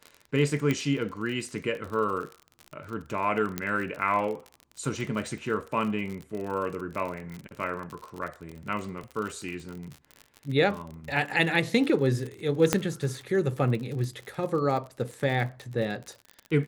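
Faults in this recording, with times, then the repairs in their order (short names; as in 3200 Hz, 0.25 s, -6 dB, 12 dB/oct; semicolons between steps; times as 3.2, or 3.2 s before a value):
crackle 48/s -33 dBFS
0.71 pop -14 dBFS
3.58 pop -13 dBFS
8.51–8.52 gap 5.9 ms
12.73 pop -6 dBFS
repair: de-click; interpolate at 8.51, 5.9 ms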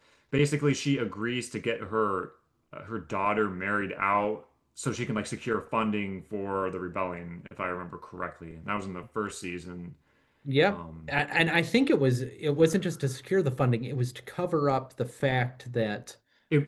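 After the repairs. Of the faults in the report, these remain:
12.73 pop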